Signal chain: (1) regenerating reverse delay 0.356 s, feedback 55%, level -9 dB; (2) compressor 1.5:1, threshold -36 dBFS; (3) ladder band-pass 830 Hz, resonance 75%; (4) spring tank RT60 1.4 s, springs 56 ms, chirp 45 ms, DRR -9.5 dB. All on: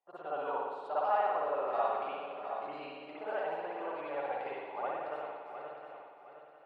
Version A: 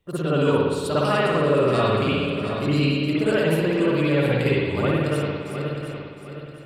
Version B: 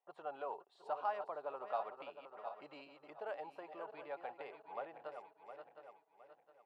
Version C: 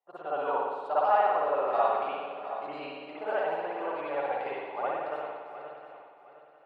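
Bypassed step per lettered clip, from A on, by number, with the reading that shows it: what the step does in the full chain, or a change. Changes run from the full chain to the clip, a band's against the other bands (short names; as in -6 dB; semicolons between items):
3, 125 Hz band +25.0 dB; 4, crest factor change +3.0 dB; 2, mean gain reduction 3.5 dB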